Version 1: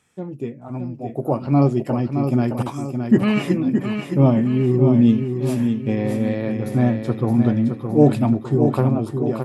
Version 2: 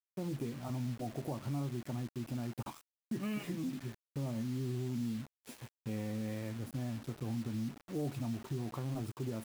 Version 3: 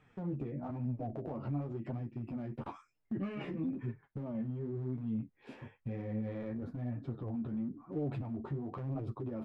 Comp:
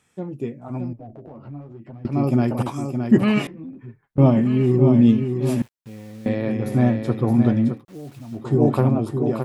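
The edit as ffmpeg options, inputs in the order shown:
-filter_complex "[2:a]asplit=2[a][b];[1:a]asplit=2[c][d];[0:a]asplit=5[e][f][g][h][i];[e]atrim=end=0.932[j];[a]atrim=start=0.928:end=2.052[k];[f]atrim=start=2.048:end=3.472[l];[b]atrim=start=3.468:end=4.182[m];[g]atrim=start=4.178:end=5.622[n];[c]atrim=start=5.618:end=6.262[o];[h]atrim=start=6.258:end=7.85[p];[d]atrim=start=7.69:end=8.47[q];[i]atrim=start=8.31[r];[j][k]acrossfade=d=0.004:c1=hsin:c2=hsin[s];[s][l]acrossfade=d=0.004:c1=hsin:c2=hsin[t];[t][m]acrossfade=d=0.004:c1=hsin:c2=hsin[u];[u][n]acrossfade=d=0.004:c1=hsin:c2=hsin[v];[v][o]acrossfade=d=0.004:c1=hsin:c2=hsin[w];[w][p]acrossfade=d=0.004:c1=hsin:c2=hsin[x];[x][q]acrossfade=d=0.16:c1=tri:c2=tri[y];[y][r]acrossfade=d=0.16:c1=tri:c2=tri"

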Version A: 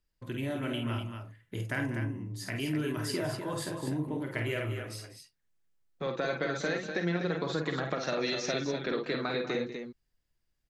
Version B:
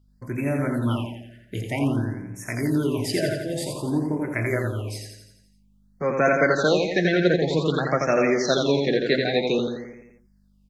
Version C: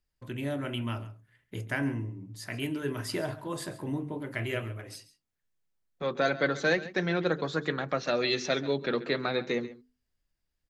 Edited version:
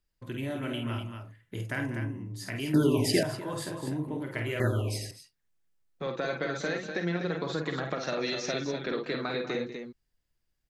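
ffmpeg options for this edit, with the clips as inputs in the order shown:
-filter_complex "[1:a]asplit=2[a][b];[0:a]asplit=3[c][d][e];[c]atrim=end=2.742[f];[a]atrim=start=2.738:end=3.232[g];[d]atrim=start=3.228:end=4.602[h];[b]atrim=start=4.598:end=5.112[i];[e]atrim=start=5.108[j];[f][g]acrossfade=d=0.004:c1=hsin:c2=hsin[k];[k][h]acrossfade=d=0.004:c1=hsin:c2=hsin[l];[l][i]acrossfade=d=0.004:c1=hsin:c2=hsin[m];[m][j]acrossfade=d=0.004:c1=hsin:c2=hsin"

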